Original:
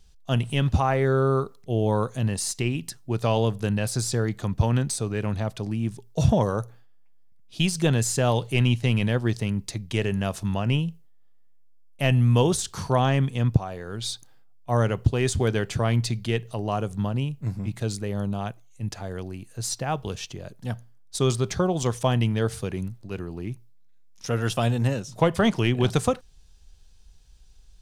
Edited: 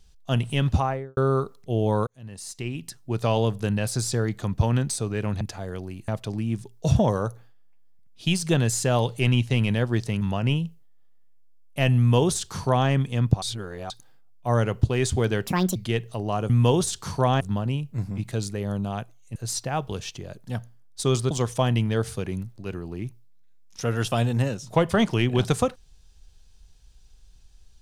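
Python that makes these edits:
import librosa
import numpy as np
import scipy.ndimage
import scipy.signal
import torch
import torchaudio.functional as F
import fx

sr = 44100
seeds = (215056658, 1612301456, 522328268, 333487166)

y = fx.studio_fade_out(x, sr, start_s=0.74, length_s=0.43)
y = fx.edit(y, sr, fx.fade_in_span(start_s=2.07, length_s=1.14),
    fx.cut(start_s=9.54, length_s=0.9),
    fx.duplicate(start_s=12.21, length_s=0.91, to_s=16.89),
    fx.reverse_span(start_s=13.65, length_s=0.48),
    fx.speed_span(start_s=15.7, length_s=0.45, speed=1.57),
    fx.move(start_s=18.84, length_s=0.67, to_s=5.41),
    fx.cut(start_s=21.46, length_s=0.3), tone=tone)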